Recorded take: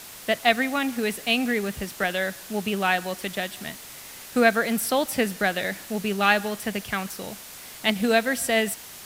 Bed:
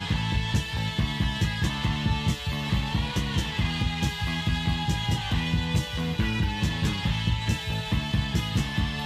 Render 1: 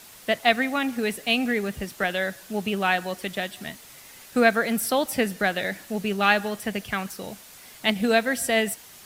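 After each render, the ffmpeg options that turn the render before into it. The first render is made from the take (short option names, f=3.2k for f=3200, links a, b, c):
-af "afftdn=nr=6:nf=-42"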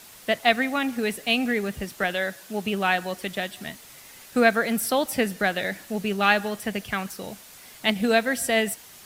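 -filter_complex "[0:a]asettb=1/sr,asplit=3[a][b][c];[a]atrim=end=2.144[d];[b]atrim=start=2.14:end=2.65,asetpts=PTS-STARTPTS,afade=t=in:d=0.004:c=qsin,afade=t=out:st=0.506:d=0.004:c=qsin,lowshelf=f=95:g=-11.5[e];[c]atrim=start=2.646[f];[d][e]acrossfade=d=0.004:c1=hsin:c2=qsin[g];[g][f]acrossfade=d=0.004:c1=qsin:c2=hsin"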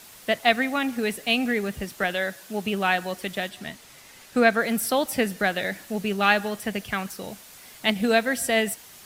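-filter_complex "[0:a]asettb=1/sr,asplit=3[a][b][c];[a]atrim=end=3.494[d];[b]atrim=start=3.49:end=4.59,asetpts=PTS-STARTPTS,afade=t=in:d=0.004:c=qsin,afade=t=out:st=1.096:d=0.004:c=qsin,highshelf=f=11k:g=-9.5[e];[c]atrim=start=4.586[f];[d][e]acrossfade=d=0.004:c1=hsin:c2=qsin[g];[g][f]acrossfade=d=0.004:c1=qsin:c2=hsin"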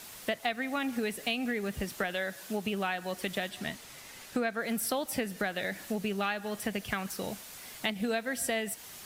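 -af "acompressor=threshold=-29dB:ratio=6"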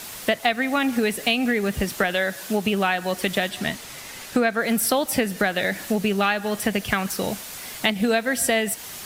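-af "volume=10.5dB"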